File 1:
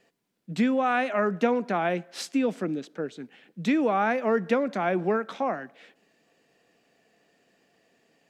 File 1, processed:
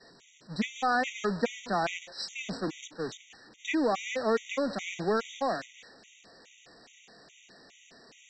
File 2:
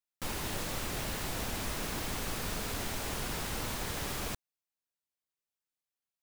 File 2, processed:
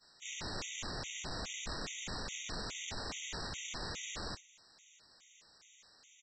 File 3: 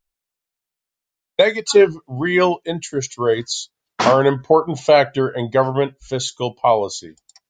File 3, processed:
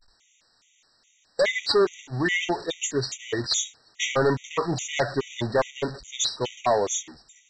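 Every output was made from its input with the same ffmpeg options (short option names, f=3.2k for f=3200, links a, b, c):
-af "aeval=exprs='val(0)+0.5*0.0473*sgn(val(0))':c=same,agate=range=-33dB:threshold=-23dB:ratio=3:detection=peak,highshelf=f=2.4k:g=8,aresample=16000,asoftclip=type=hard:threshold=-11dB,aresample=44100,afftfilt=real='re*gt(sin(2*PI*2.4*pts/sr)*(1-2*mod(floor(b*sr/1024/1900),2)),0)':imag='im*gt(sin(2*PI*2.4*pts/sr)*(1-2*mod(floor(b*sr/1024/1900),2)),0)':win_size=1024:overlap=0.75,volume=-5dB"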